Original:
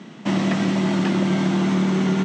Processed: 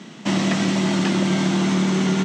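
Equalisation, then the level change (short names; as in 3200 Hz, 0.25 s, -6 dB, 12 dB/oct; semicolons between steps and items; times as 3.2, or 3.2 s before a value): high shelf 3600 Hz +10 dB; 0.0 dB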